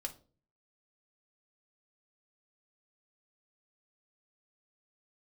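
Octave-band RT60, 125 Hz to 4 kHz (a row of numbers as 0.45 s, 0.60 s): 0.70 s, 0.60 s, 0.50 s, 0.30 s, 0.25 s, 0.30 s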